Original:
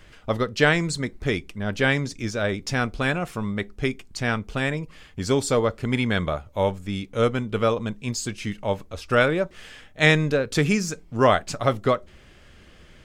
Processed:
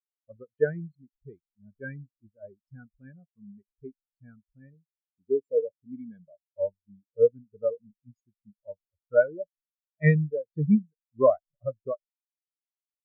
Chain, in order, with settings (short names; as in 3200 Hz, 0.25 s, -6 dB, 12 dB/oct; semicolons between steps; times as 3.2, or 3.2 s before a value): 4.74–6.49 notch comb 1300 Hz; spectral expander 4:1; gain -5 dB